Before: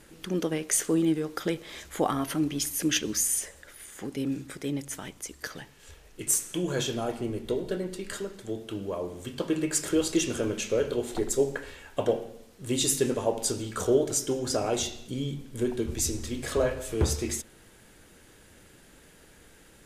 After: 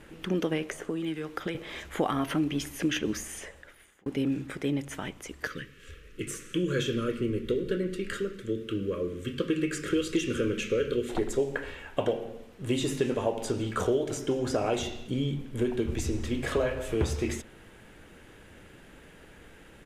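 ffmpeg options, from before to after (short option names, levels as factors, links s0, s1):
-filter_complex "[0:a]asettb=1/sr,asplit=3[s0][s1][s2];[s0]atrim=end=0.674[s3];[s1]atrim=start=0.67:end=1.55,asetpts=PTS-STARTPTS,afade=t=in:d=0.004:c=qsin,afade=t=out:st=0.876:d=0.004:c=qsin,acrossover=split=120|1200[s4][s5][s6];[s4]acompressor=threshold=0.00178:ratio=4[s7];[s5]acompressor=threshold=0.0141:ratio=4[s8];[s6]acompressor=threshold=0.01:ratio=4[s9];[s7][s8][s9]amix=inputs=3:normalize=0[s10];[s2]atrim=start=1.546[s11];[s3][s10]acrossfade=d=0.004:c1=hsin:c2=qsin[s12];[s12][s11]acrossfade=d=0.004:c1=qsin:c2=hsin,asettb=1/sr,asplit=3[s13][s14][s15];[s13]atrim=end=5.474[s16];[s14]atrim=start=5.47:end=11.09,asetpts=PTS-STARTPTS,afade=t=in:d=0.004:c=qsin,afade=t=out:st=5.616:d=0.004:c=qsin,asuperstop=centerf=790:order=8:qfactor=1.3[s17];[s15]atrim=start=11.086[s18];[s16][s17]acrossfade=d=0.004:c1=hsin:c2=qsin[s19];[s19][s18]acrossfade=d=0.004:c1=qsin:c2=hsin,asplit=2[s20][s21];[s20]atrim=end=4.06,asetpts=PTS-STARTPTS,afade=t=out:st=3.38:d=0.68[s22];[s21]atrim=start=4.06,asetpts=PTS-STARTPTS,afade=t=in:d=0.004:c=hsin[s23];[s22][s23]concat=n=2:v=0:a=1,acrossover=split=2100|6900[s24][s25][s26];[s24]acompressor=threshold=0.0398:ratio=4[s27];[s25]acompressor=threshold=0.0158:ratio=4[s28];[s26]acompressor=threshold=0.0112:ratio=4[s29];[s27][s28][s29]amix=inputs=3:normalize=0,firequalizer=gain_entry='entry(2800,0);entry(4400,-9);entry(8500,-11)':delay=0.05:min_phase=1,volume=1.58"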